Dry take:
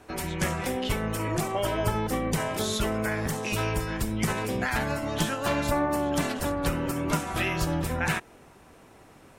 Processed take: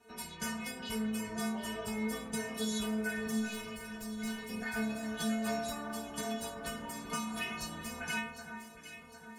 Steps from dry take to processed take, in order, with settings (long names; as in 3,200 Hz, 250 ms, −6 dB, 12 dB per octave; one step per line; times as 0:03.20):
high-pass filter 40 Hz
0:03.38–0:04.50: tube saturation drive 29 dB, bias 0.8
stiff-string resonator 220 Hz, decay 0.63 s, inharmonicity 0.008
on a send: delay that swaps between a low-pass and a high-pass 378 ms, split 1,800 Hz, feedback 70%, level −8 dB
on the sum: level +9 dB